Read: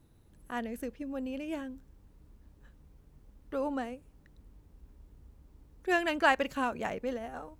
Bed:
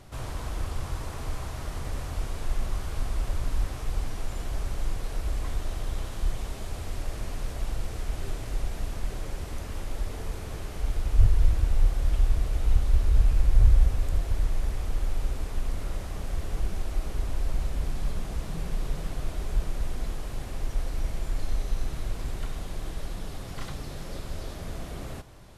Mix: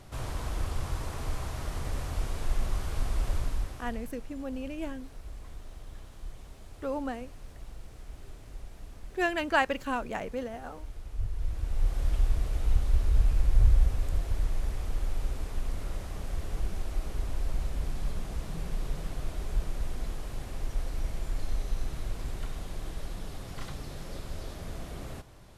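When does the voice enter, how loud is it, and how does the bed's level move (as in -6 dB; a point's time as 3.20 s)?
3.30 s, 0.0 dB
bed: 3.37 s -0.5 dB
4.14 s -14 dB
11.26 s -14 dB
11.99 s -3 dB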